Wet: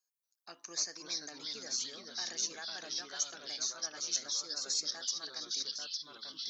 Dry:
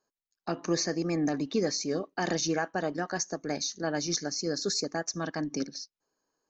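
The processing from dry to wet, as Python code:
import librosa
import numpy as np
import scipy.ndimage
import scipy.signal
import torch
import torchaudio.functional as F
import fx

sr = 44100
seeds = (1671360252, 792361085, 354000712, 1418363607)

y = fx.echo_pitch(x, sr, ms=234, semitones=-2, count=3, db_per_echo=-3.0)
y = np.diff(y, prepend=0.0)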